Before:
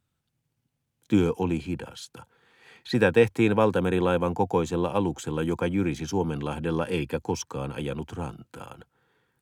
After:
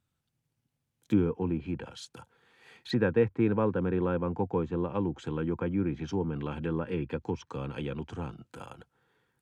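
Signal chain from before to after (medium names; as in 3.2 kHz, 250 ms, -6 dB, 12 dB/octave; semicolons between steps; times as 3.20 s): dynamic bell 710 Hz, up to -8 dB, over -40 dBFS, Q 1.6; low-pass that closes with the level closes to 1.4 kHz, closed at -24 dBFS; trim -3 dB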